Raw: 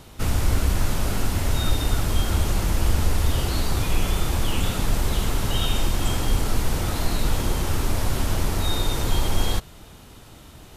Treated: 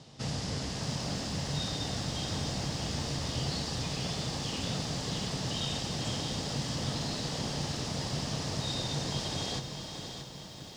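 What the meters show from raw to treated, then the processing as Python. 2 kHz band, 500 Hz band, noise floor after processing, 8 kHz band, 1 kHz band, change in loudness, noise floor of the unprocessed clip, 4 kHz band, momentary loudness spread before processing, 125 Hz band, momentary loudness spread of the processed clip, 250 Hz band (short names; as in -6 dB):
-9.0 dB, -7.5 dB, -46 dBFS, -6.5 dB, -9.0 dB, -8.5 dB, -45 dBFS, -3.5 dB, 2 LU, -10.0 dB, 3 LU, -6.5 dB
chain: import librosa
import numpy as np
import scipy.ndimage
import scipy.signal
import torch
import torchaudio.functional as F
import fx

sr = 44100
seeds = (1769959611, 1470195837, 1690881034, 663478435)

p1 = (np.mod(10.0 ** (17.5 / 20.0) * x + 1.0, 2.0) - 1.0) / 10.0 ** (17.5 / 20.0)
p2 = x + F.gain(torch.from_numpy(p1), -7.0).numpy()
p3 = fx.cabinet(p2, sr, low_hz=140.0, low_slope=12, high_hz=7100.0, hz=(140.0, 360.0, 980.0, 1400.0, 2300.0, 5000.0), db=(9, -6, -4, -9, -6, 7))
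p4 = fx.echo_diffused(p3, sr, ms=513, feedback_pct=47, wet_db=-11.5)
p5 = fx.echo_crushed(p4, sr, ms=628, feedback_pct=55, bits=8, wet_db=-8.5)
y = F.gain(torch.from_numpy(p5), -8.5).numpy()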